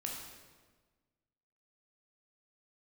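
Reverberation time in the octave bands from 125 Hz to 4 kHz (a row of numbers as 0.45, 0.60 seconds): 1.7, 1.6, 1.5, 1.3, 1.2, 1.1 seconds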